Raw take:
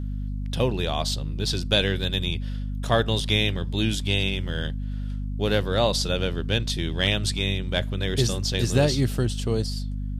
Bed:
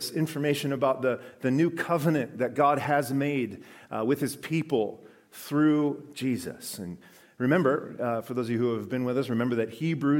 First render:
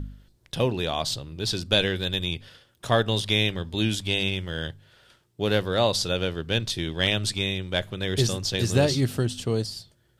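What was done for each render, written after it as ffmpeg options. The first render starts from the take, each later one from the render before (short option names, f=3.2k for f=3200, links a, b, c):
-af "bandreject=f=50:t=h:w=4,bandreject=f=100:t=h:w=4,bandreject=f=150:t=h:w=4,bandreject=f=200:t=h:w=4,bandreject=f=250:t=h:w=4"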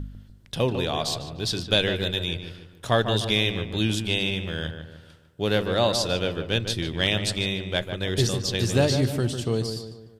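-filter_complex "[0:a]asplit=2[a][b];[b]adelay=149,lowpass=f=2.1k:p=1,volume=-7.5dB,asplit=2[c][d];[d]adelay=149,lowpass=f=2.1k:p=1,volume=0.47,asplit=2[e][f];[f]adelay=149,lowpass=f=2.1k:p=1,volume=0.47,asplit=2[g][h];[h]adelay=149,lowpass=f=2.1k:p=1,volume=0.47,asplit=2[i][j];[j]adelay=149,lowpass=f=2.1k:p=1,volume=0.47[k];[a][c][e][g][i][k]amix=inputs=6:normalize=0"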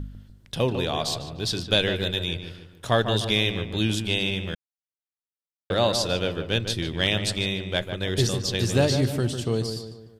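-filter_complex "[0:a]asplit=3[a][b][c];[a]atrim=end=4.55,asetpts=PTS-STARTPTS,afade=t=out:st=4.546:d=0.004:c=hsin[d];[b]atrim=start=4.55:end=5.7,asetpts=PTS-STARTPTS,volume=0[e];[c]atrim=start=5.7,asetpts=PTS-STARTPTS,afade=t=in:d=0.004:c=hsin[f];[d][e][f]concat=n=3:v=0:a=1"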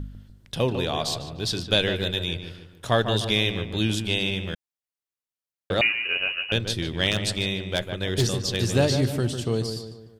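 -filter_complex "[0:a]asettb=1/sr,asplit=3[a][b][c];[a]atrim=end=5.814[d];[b]atrim=start=5.81:end=6.52,asetpts=PTS-STARTPTS,afade=t=in:d=0.004:c=qsin,afade=t=out:st=0.706:d=0.004:c=qsin,lowpass=f=2.6k:t=q:w=0.5098,lowpass=f=2.6k:t=q:w=0.6013,lowpass=f=2.6k:t=q:w=0.9,lowpass=f=2.6k:t=q:w=2.563,afreqshift=-3000[e];[c]atrim=start=6.516[f];[d][e]acrossfade=d=0.004:c1=hsin:c2=qsin[g];[g][f]acrossfade=d=0.004:c1=qsin:c2=hsin,asettb=1/sr,asplit=3[h][i][j];[h]atrim=end=7.114[k];[i]atrim=start=7.11:end=8.66,asetpts=PTS-STARTPTS,afade=t=in:d=0.004:c=qsin,afade=t=out:st=1.546:d=0.004:c=qsin,aeval=exprs='0.211*(abs(mod(val(0)/0.211+3,4)-2)-1)':c=same[l];[j]atrim=start=8.656[m];[k][l]acrossfade=d=0.004:c1=hsin:c2=qsin[n];[n][m]acrossfade=d=0.004:c1=qsin:c2=hsin"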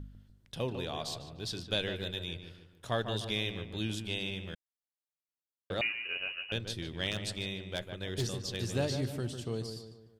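-af "volume=-11dB"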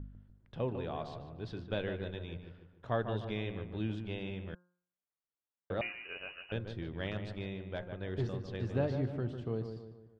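-af "lowpass=1.6k,bandreject=f=178:t=h:w=4,bandreject=f=356:t=h:w=4,bandreject=f=534:t=h:w=4,bandreject=f=712:t=h:w=4,bandreject=f=890:t=h:w=4,bandreject=f=1.068k:t=h:w=4,bandreject=f=1.246k:t=h:w=4,bandreject=f=1.424k:t=h:w=4,bandreject=f=1.602k:t=h:w=4"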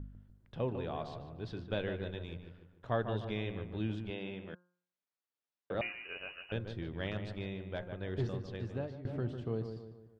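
-filter_complex "[0:a]asettb=1/sr,asplit=3[a][b][c];[a]atrim=end=2.224[d];[b]atrim=start=2.22:end=2.9,asetpts=PTS-STARTPTS,afade=t=in:d=0.004:c=qsin,afade=t=out:st=0.676:d=0.004:c=qsin,aeval=exprs='if(lt(val(0),0),0.708*val(0),val(0))':c=same[e];[c]atrim=start=2.896[f];[d][e]acrossfade=d=0.004:c1=hsin:c2=qsin[g];[g][f]acrossfade=d=0.004:c1=qsin:c2=hsin,asettb=1/sr,asplit=3[h][i][j];[h]atrim=end=4.104[k];[i]atrim=start=4.1:end=5.75,asetpts=PTS-STARTPTS,afade=t=in:d=0.004:c=qsin,afade=t=out:st=1.646:d=0.004:c=qsin,highpass=170,lowpass=4.9k[l];[j]atrim=start=5.746[m];[k][l]acrossfade=d=0.004:c1=hsin:c2=qsin[n];[n][m]acrossfade=d=0.004:c1=qsin:c2=hsin,asplit=2[o][p];[o]atrim=end=9.05,asetpts=PTS-STARTPTS,afade=t=out:st=8.39:d=0.66:silence=0.133352[q];[p]atrim=start=9.05,asetpts=PTS-STARTPTS,afade=t=in:d=0.004:c=hsin:silence=0.133352[r];[q][r]concat=n=2:v=0:a=1"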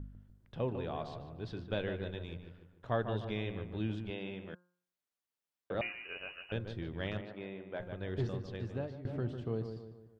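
-filter_complex "[0:a]asettb=1/sr,asplit=3[a][b][c];[a]atrim=end=7.214[d];[b]atrim=start=7.21:end=7.8,asetpts=PTS-STARTPTS,afade=t=in:d=0.004:c=qsin,afade=t=out:st=0.586:d=0.004:c=qsin,highpass=230,lowpass=2.4k[e];[c]atrim=start=7.796[f];[d][e]acrossfade=d=0.004:c1=hsin:c2=qsin[g];[g][f]acrossfade=d=0.004:c1=qsin:c2=hsin"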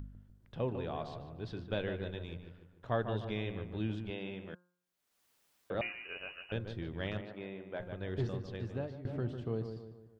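-af "acompressor=mode=upward:threshold=-56dB:ratio=2.5"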